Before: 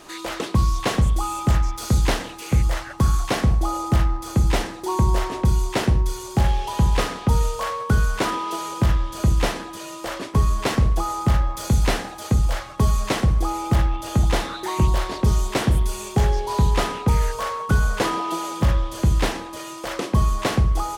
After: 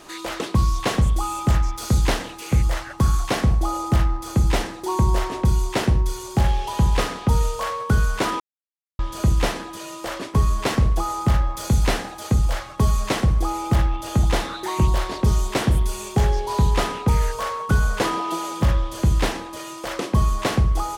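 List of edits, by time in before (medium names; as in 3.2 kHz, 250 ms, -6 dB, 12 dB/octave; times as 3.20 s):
8.40–8.99 s: mute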